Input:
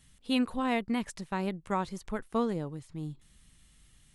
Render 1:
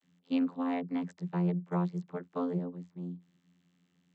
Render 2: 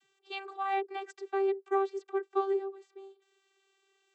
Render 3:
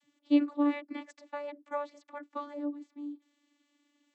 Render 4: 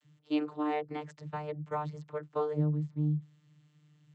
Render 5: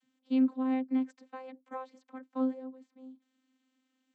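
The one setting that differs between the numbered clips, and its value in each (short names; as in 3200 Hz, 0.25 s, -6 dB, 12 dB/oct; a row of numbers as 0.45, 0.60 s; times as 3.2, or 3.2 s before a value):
vocoder, frequency: 88, 390, 290, 150, 260 Hz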